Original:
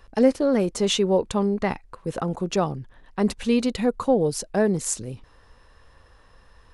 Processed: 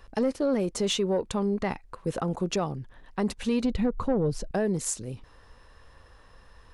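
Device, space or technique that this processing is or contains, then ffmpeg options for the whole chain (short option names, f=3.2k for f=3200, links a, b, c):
soft clipper into limiter: -filter_complex "[0:a]asettb=1/sr,asplit=3[a][b][c];[a]atrim=end=3.634[d];[b]atrim=start=3.63:end=4.51,asetpts=PTS-STARTPTS,afade=t=in:d=0.004:c=qsin,afade=t=out:st=0.876:d=0.004:c=qsin,aemphasis=mode=reproduction:type=bsi[e];[c]atrim=start=4.506[f];[d][e]acrossfade=d=0.004:c1=hsin:c2=qsin[g];[g][f]acrossfade=d=0.004:c1=qsin:c2=hsin,asoftclip=type=tanh:threshold=-10.5dB,alimiter=limit=-18.5dB:level=0:latency=1:release=337"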